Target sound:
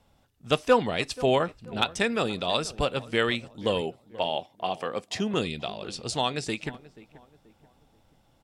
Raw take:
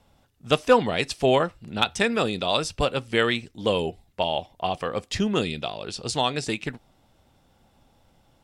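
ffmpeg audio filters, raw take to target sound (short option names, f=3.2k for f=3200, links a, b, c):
-filter_complex "[0:a]asettb=1/sr,asplit=3[a][b][c];[a]atrim=end=3.814[d];[b]atrim=start=3.81:end=5.34,asetpts=PTS-STARTPTS,afade=t=in:d=0.004:c=qsin,afade=t=out:st=1.526:d=0.004:c=qsin,highpass=170[e];[c]atrim=start=5.336[f];[d][e]acrossfade=d=0.004:c1=hsin:c2=qsin[g];[g][f]acrossfade=d=0.004:c1=qsin:c2=hsin,asplit=2[h][i];[i]adelay=483,lowpass=f=1.4k:p=1,volume=-18dB,asplit=2[j][k];[k]adelay=483,lowpass=f=1.4k:p=1,volume=0.4,asplit=2[l][m];[m]adelay=483,lowpass=f=1.4k:p=1,volume=0.4[n];[j][l][n]amix=inputs=3:normalize=0[o];[h][o]amix=inputs=2:normalize=0,volume=-3dB"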